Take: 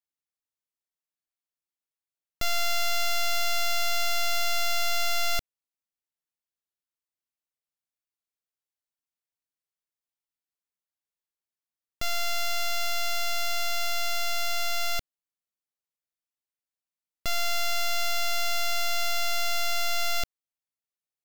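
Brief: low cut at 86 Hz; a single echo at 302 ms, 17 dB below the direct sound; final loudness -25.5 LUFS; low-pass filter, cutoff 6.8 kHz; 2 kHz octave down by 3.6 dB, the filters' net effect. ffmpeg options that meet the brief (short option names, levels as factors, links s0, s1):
-af "highpass=86,lowpass=6800,equalizer=f=2000:t=o:g=-4.5,aecho=1:1:302:0.141,volume=1.78"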